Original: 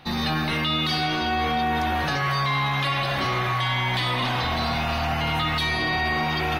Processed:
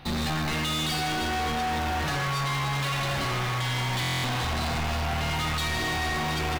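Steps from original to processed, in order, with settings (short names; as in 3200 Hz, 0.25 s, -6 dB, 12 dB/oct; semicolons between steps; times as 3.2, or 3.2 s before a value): in parallel at -9 dB: companded quantiser 2-bit; on the sum: low shelf 100 Hz +10.5 dB; speakerphone echo 90 ms, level -6 dB; soft clip -26 dBFS, distortion -8 dB; stuck buffer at 4.01, samples 1024, times 9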